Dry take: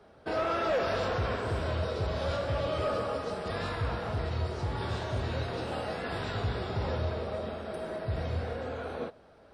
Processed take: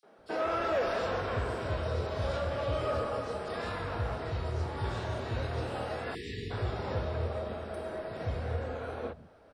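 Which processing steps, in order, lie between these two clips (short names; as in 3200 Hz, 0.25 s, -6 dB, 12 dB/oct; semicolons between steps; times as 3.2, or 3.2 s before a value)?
three bands offset in time highs, mids, lows 30/180 ms, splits 170/4100 Hz; spectral delete 6.15–6.51, 480–1700 Hz; gain -1 dB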